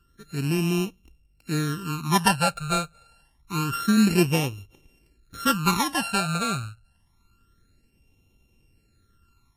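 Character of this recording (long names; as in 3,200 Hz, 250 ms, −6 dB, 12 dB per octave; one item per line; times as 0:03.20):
a buzz of ramps at a fixed pitch in blocks of 32 samples
phaser sweep stages 12, 0.27 Hz, lowest notch 310–1,500 Hz
Ogg Vorbis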